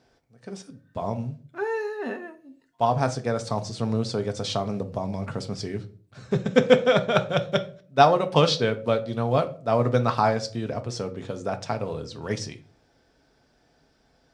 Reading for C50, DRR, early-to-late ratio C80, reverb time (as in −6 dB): 17.0 dB, 6.5 dB, 20.5 dB, 0.45 s